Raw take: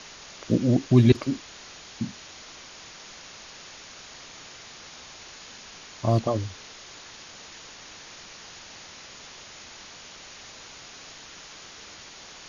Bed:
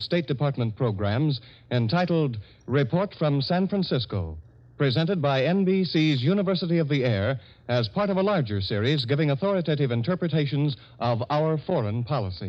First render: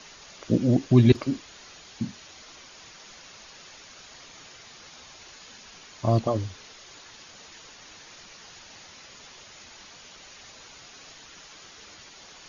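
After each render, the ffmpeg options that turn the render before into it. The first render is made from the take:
ffmpeg -i in.wav -af "afftdn=noise_reduction=6:noise_floor=-46" out.wav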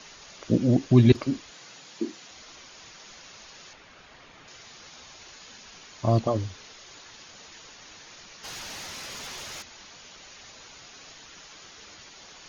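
ffmpeg -i in.wav -filter_complex "[0:a]asettb=1/sr,asplit=3[link_01][link_02][link_03];[link_01]atrim=end=1.514[link_04];[link_02]atrim=start=1.51:end=2.31,asetpts=PTS-STARTPTS,afade=type=in:duration=0.004:curve=qsin,afade=type=out:start_time=0.796:duration=0.004:curve=qsin,afreqshift=110[link_05];[link_03]atrim=start=2.306[link_06];[link_04][link_05]acrossfade=duration=0.004:curve1=hsin:curve2=qsin[link_07];[link_07][link_06]acrossfade=duration=0.004:curve1=qsin:curve2=hsin,asettb=1/sr,asplit=3[link_08][link_09][link_10];[link_08]atrim=end=3.734[link_11];[link_09]atrim=start=3.73:end=4.48,asetpts=PTS-STARTPTS,afade=type=in:duration=0.004:curve=qsin,afade=type=out:start_time=0.746:duration=0.004:curve=qsin,bass=frequency=250:gain=1,treble=frequency=4000:gain=-14[link_12];[link_10]atrim=start=4.476[link_13];[link_11][link_12]acrossfade=duration=0.004:curve1=hsin:curve2=qsin[link_14];[link_14][link_13]acrossfade=duration=0.004:curve1=qsin:curve2=hsin,asplit=3[link_15][link_16][link_17];[link_15]afade=type=out:start_time=8.43:duration=0.02[link_18];[link_16]aeval=exprs='0.0178*sin(PI/2*2.51*val(0)/0.0178)':channel_layout=same,afade=type=in:start_time=8.43:duration=0.02,afade=type=out:start_time=9.61:duration=0.02[link_19];[link_17]afade=type=in:start_time=9.61:duration=0.02[link_20];[link_18][link_19][link_20]amix=inputs=3:normalize=0" out.wav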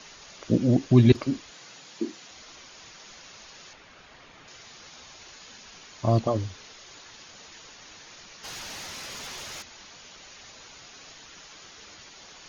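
ffmpeg -i in.wav -af anull out.wav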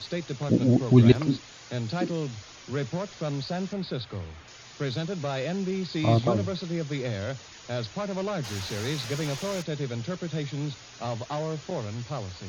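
ffmpeg -i in.wav -i bed.wav -filter_complex "[1:a]volume=-7.5dB[link_01];[0:a][link_01]amix=inputs=2:normalize=0" out.wav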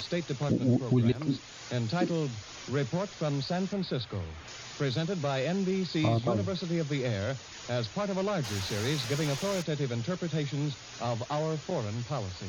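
ffmpeg -i in.wav -af "alimiter=limit=-15.5dB:level=0:latency=1:release=384,acompressor=mode=upward:threshold=-37dB:ratio=2.5" out.wav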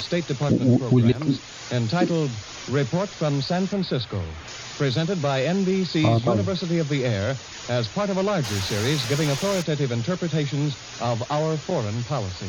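ffmpeg -i in.wav -af "volume=7.5dB" out.wav

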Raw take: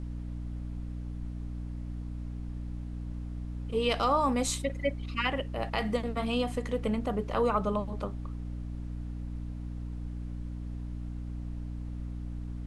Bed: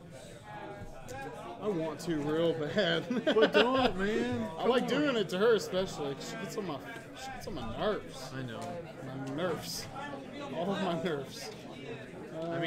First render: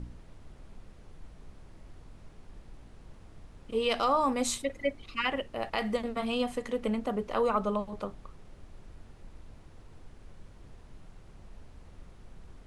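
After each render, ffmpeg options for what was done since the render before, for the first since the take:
ffmpeg -i in.wav -af "bandreject=frequency=60:width_type=h:width=4,bandreject=frequency=120:width_type=h:width=4,bandreject=frequency=180:width_type=h:width=4,bandreject=frequency=240:width_type=h:width=4,bandreject=frequency=300:width_type=h:width=4" out.wav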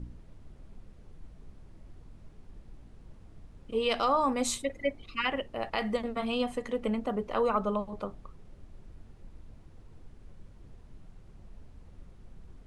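ffmpeg -i in.wav -af "afftdn=noise_reduction=6:noise_floor=-53" out.wav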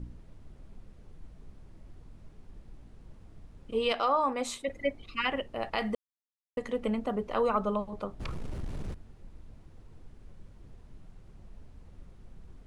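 ffmpeg -i in.wav -filter_complex "[0:a]asettb=1/sr,asplit=3[link_01][link_02][link_03];[link_01]atrim=end=3.924[link_04];[link_02]atrim=start=3.92:end=4.68,asetpts=PTS-STARTPTS,afade=type=in:duration=0.004:curve=qsin,afade=type=out:start_time=0.756:duration=0.004:curve=qsin,bass=frequency=250:gain=-12,treble=frequency=4000:gain=-8[link_05];[link_03]atrim=start=4.676[link_06];[link_04][link_05]acrossfade=duration=0.004:curve1=hsin:curve2=qsin[link_07];[link_07][link_06]acrossfade=duration=0.004:curve1=qsin:curve2=hsin,asplit=3[link_08][link_09][link_10];[link_08]afade=type=out:start_time=8.19:duration=0.02[link_11];[link_09]aeval=exprs='0.0266*sin(PI/2*5.62*val(0)/0.0266)':channel_layout=same,afade=type=in:start_time=8.19:duration=0.02,afade=type=out:start_time=8.93:duration=0.02[link_12];[link_10]afade=type=in:start_time=8.93:duration=0.02[link_13];[link_11][link_12][link_13]amix=inputs=3:normalize=0,asplit=3[link_14][link_15][link_16];[link_14]atrim=end=5.95,asetpts=PTS-STARTPTS,afade=type=out:start_time=5.946:duration=0.004:curve=hsin[link_17];[link_15]atrim=start=5.95:end=6.57,asetpts=PTS-STARTPTS,volume=0[link_18];[link_16]atrim=start=6.57,asetpts=PTS-STARTPTS,afade=type=in:duration=0.004:curve=hsin[link_19];[link_17][link_18][link_19]concat=n=3:v=0:a=1" out.wav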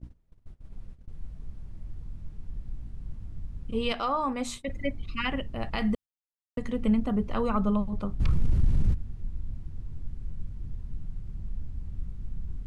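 ffmpeg -i in.wav -af "asubboost=boost=6:cutoff=200,agate=range=-21dB:threshold=-40dB:ratio=16:detection=peak" out.wav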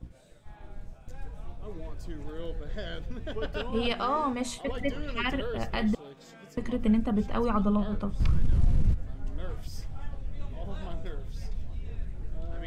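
ffmpeg -i in.wav -i bed.wav -filter_complex "[1:a]volume=-10.5dB[link_01];[0:a][link_01]amix=inputs=2:normalize=0" out.wav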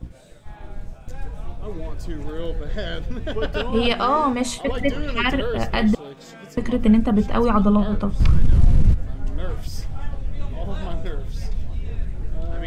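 ffmpeg -i in.wav -af "volume=9dB" out.wav

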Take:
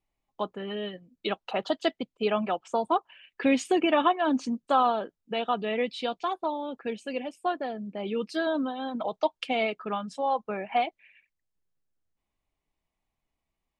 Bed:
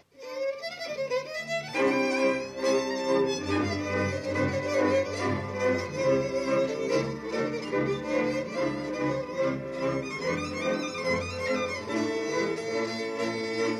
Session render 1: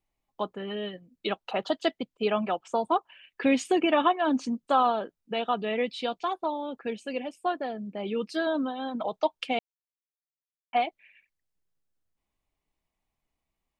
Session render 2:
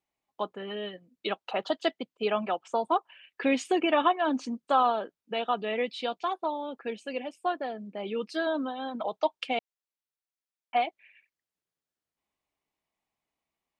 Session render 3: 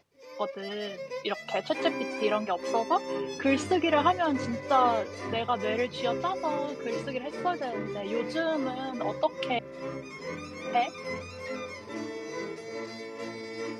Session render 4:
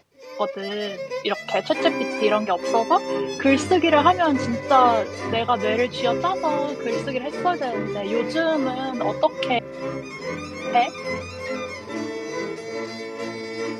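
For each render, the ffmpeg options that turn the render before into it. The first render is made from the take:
ffmpeg -i in.wav -filter_complex "[0:a]asplit=3[link_01][link_02][link_03];[link_01]atrim=end=9.59,asetpts=PTS-STARTPTS,afade=type=out:start_time=9.586:duration=0.004:curve=hsin[link_04];[link_02]atrim=start=9.59:end=10.73,asetpts=PTS-STARTPTS,volume=0[link_05];[link_03]atrim=start=10.73,asetpts=PTS-STARTPTS,afade=type=in:duration=0.004:curve=hsin[link_06];[link_04][link_05][link_06]concat=n=3:v=0:a=1" out.wav
ffmpeg -i in.wav -af "highpass=frequency=290:poles=1,highshelf=frequency=8200:gain=-6.5" out.wav
ffmpeg -i in.wav -i bed.wav -filter_complex "[1:a]volume=-8dB[link_01];[0:a][link_01]amix=inputs=2:normalize=0" out.wav
ffmpeg -i in.wav -af "volume=7.5dB" out.wav

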